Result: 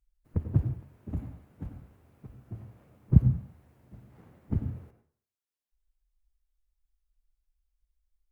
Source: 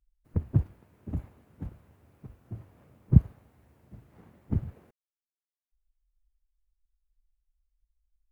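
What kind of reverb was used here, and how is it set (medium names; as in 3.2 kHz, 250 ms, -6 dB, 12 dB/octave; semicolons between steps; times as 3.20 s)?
plate-style reverb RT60 0.51 s, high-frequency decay 0.6×, pre-delay 80 ms, DRR 8.5 dB; trim -1 dB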